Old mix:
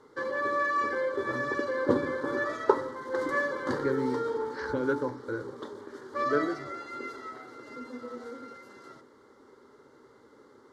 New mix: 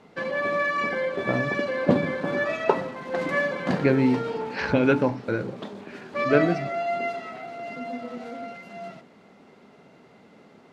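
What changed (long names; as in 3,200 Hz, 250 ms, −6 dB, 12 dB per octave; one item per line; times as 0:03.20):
speech +6.0 dB
master: remove phaser with its sweep stopped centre 690 Hz, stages 6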